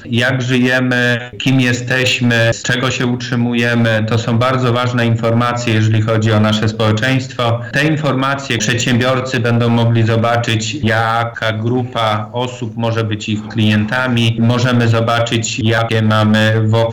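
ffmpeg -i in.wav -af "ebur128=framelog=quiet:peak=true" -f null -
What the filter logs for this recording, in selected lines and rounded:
Integrated loudness:
  I:         -14.1 LUFS
  Threshold: -24.1 LUFS
Loudness range:
  LRA:         2.4 LU
  Threshold: -34.3 LUFS
  LRA low:   -15.9 LUFS
  LRA high:  -13.5 LUFS
True peak:
  Peak:       -6.1 dBFS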